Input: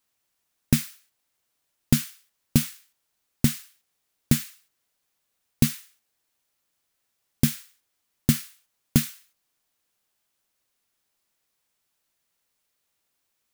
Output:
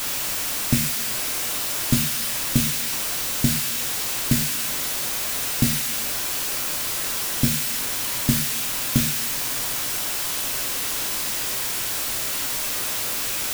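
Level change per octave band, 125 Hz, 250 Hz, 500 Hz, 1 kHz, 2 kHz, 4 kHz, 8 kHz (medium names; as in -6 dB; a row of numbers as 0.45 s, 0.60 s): +0.5 dB, +0.5 dB, +8.0 dB, +18.0 dB, +13.5 dB, +13.0 dB, +13.0 dB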